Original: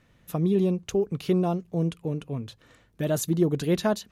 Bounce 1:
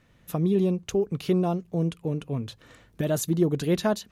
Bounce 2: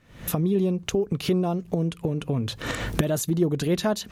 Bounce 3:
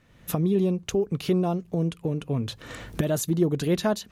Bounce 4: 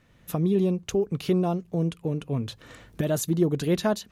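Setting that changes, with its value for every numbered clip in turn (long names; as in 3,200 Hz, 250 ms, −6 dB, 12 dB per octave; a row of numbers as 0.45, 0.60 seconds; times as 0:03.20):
camcorder AGC, rising by: 5.5, 89, 33, 14 dB per second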